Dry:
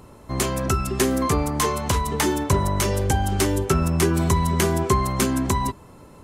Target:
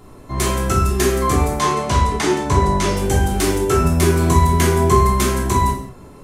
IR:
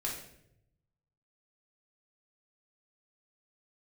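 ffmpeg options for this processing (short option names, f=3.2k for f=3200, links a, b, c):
-filter_complex "[0:a]asettb=1/sr,asplit=3[a][b][c];[a]atrim=end=1.484[d];[b]atrim=start=1.48:end=2.91,asetpts=PTS-STARTPTS,afade=t=in:d=0.004:c=qsin,afade=t=out:st=1.426:d=0.004:c=qsin,lowpass=7.1k[e];[c]atrim=start=2.906[f];[d][e]acrossfade=d=0.004:c1=hsin:c2=qsin[g];[g][f]acrossfade=d=0.004:c1=qsin:c2=hsin[h];[1:a]atrim=start_sample=2205,afade=t=out:st=0.27:d=0.01,atrim=end_sample=12348[i];[h][i]afir=irnorm=-1:irlink=0,volume=1.5dB"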